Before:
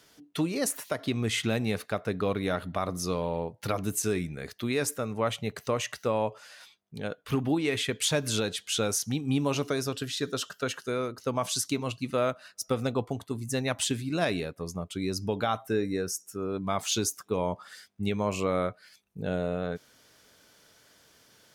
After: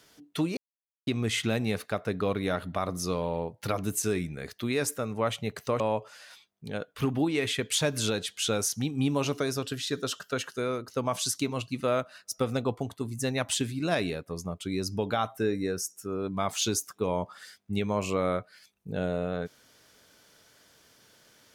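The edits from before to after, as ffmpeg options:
ffmpeg -i in.wav -filter_complex "[0:a]asplit=4[link_01][link_02][link_03][link_04];[link_01]atrim=end=0.57,asetpts=PTS-STARTPTS,afade=type=out:start_time=0.566:duration=0.004:curve=hsin[link_05];[link_02]atrim=start=0.57:end=1.07,asetpts=PTS-STARTPTS,volume=0[link_06];[link_03]atrim=start=1.07:end=5.802,asetpts=PTS-STARTPTS,afade=type=in:duration=0.004:curve=hsin[link_07];[link_04]atrim=start=6.098[link_08];[link_05][link_06][link_07]concat=n=3:v=0:a=1[link_09];[link_09][link_08]acrossfade=duration=0.004:curve1=hsin:curve2=hsin" out.wav

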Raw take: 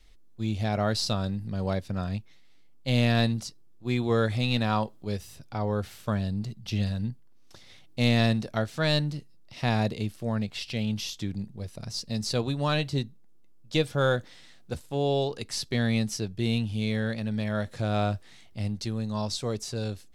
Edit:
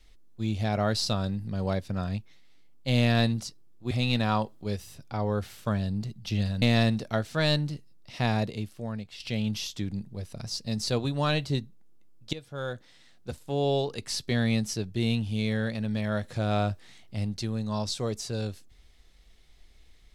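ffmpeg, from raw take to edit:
ffmpeg -i in.wav -filter_complex "[0:a]asplit=5[link_01][link_02][link_03][link_04][link_05];[link_01]atrim=end=3.912[link_06];[link_02]atrim=start=4.318:end=7.032[link_07];[link_03]atrim=start=8.048:end=10.63,asetpts=PTS-STARTPTS,afade=type=out:start_time=1.542:duration=1.04:silence=0.316228[link_08];[link_04]atrim=start=10.63:end=13.76,asetpts=PTS-STARTPTS,afade=type=in:duration=0.004:curve=hsin:silence=0.316228,afade=type=out:start_time=3.126:duration=0.004:curve=hsin:silence=0.112202[link_09];[link_05]atrim=start=13.76,asetpts=PTS-STARTPTS,afade=type=in:duration=1.37:silence=0.112202[link_10];[link_06][link_07]acrossfade=duration=0.004:curve1=hsin:curve2=hsin[link_11];[link_08][link_09][link_10]concat=n=3:v=0:a=1[link_12];[link_11][link_12]acrossfade=duration=0.004:curve1=hsin:curve2=hsin" out.wav

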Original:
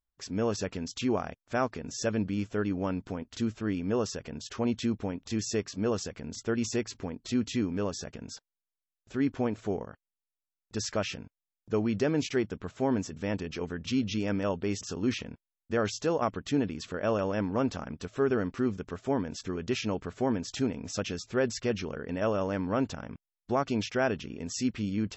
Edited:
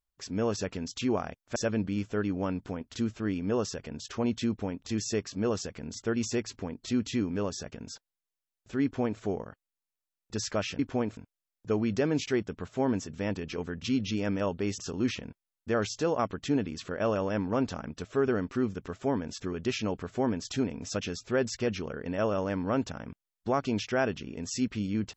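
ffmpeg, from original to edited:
ffmpeg -i in.wav -filter_complex "[0:a]asplit=4[link_01][link_02][link_03][link_04];[link_01]atrim=end=1.562[link_05];[link_02]atrim=start=1.968:end=11.202[link_06];[link_03]atrim=start=9.238:end=9.622[link_07];[link_04]atrim=start=11.198[link_08];[link_05][link_06]acrossfade=duration=0.004:curve1=hsin:curve2=hsin[link_09];[link_09][link_07]acrossfade=duration=0.004:curve1=hsin:curve2=hsin[link_10];[link_10][link_08]acrossfade=duration=0.004:curve1=hsin:curve2=hsin" out.wav

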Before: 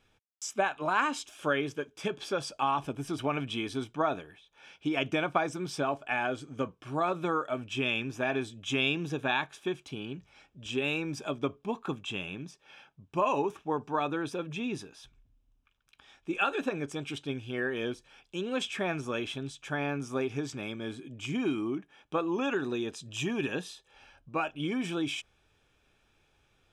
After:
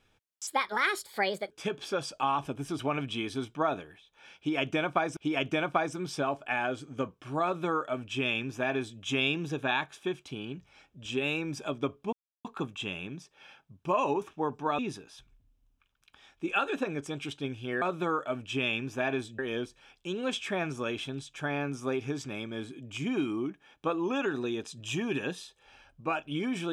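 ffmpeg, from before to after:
ffmpeg -i in.wav -filter_complex "[0:a]asplit=8[link_01][link_02][link_03][link_04][link_05][link_06][link_07][link_08];[link_01]atrim=end=0.474[link_09];[link_02]atrim=start=0.47:end=1.9,asetpts=PTS-STARTPTS,asetrate=60858,aresample=44100[link_10];[link_03]atrim=start=1.896:end=5.562[link_11];[link_04]atrim=start=4.768:end=11.73,asetpts=PTS-STARTPTS,afade=type=out:start_time=6.958:duration=0.004:curve=hsin,apad=pad_dur=0.32[link_12];[link_05]atrim=start=11.73:end=14.072,asetpts=PTS-STARTPTS,afade=type=in:duration=0.004:curve=hsin[link_13];[link_06]atrim=start=14.638:end=17.672[link_14];[link_07]atrim=start=7.038:end=8.612[link_15];[link_08]atrim=start=17.668[link_16];[link_09][link_10]acrossfade=duration=0.004:curve1=hsin:curve2=hsin[link_17];[link_17][link_11]acrossfade=duration=0.004:curve1=hsin:curve2=hsin[link_18];[link_12][link_13]concat=n=2:v=0:a=1[link_19];[link_18][link_19]acrossfade=duration=0.004:curve1=hsin:curve2=hsin[link_20];[link_20][link_14]acrossfade=duration=0.004:curve1=hsin:curve2=hsin[link_21];[link_21][link_15]acrossfade=duration=0.004:curve1=hsin:curve2=hsin[link_22];[link_22][link_16]acrossfade=duration=0.004:curve1=hsin:curve2=hsin" out.wav

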